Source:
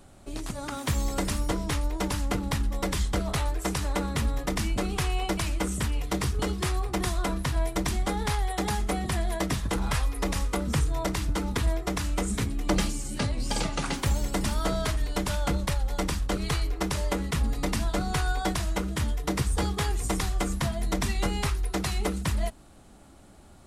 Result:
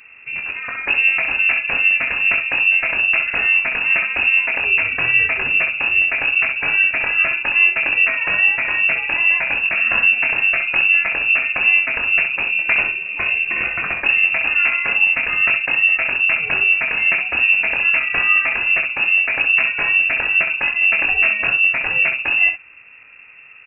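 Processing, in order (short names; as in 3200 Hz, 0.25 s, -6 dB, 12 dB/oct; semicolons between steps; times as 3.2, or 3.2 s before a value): early reflections 22 ms -7 dB, 65 ms -7.5 dB; inverted band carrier 2700 Hz; gain +6.5 dB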